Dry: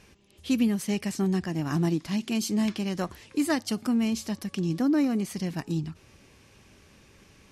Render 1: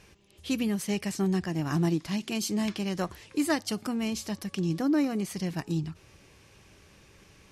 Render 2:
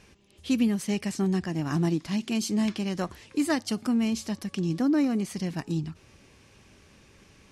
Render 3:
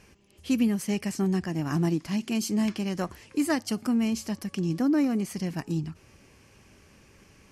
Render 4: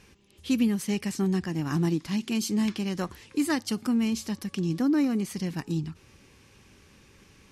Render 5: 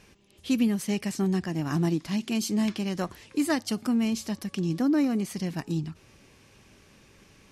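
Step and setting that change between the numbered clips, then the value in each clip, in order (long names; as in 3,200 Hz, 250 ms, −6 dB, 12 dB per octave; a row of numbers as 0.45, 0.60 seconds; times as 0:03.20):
parametric band, centre frequency: 240, 13,000, 3,700, 650, 74 Hertz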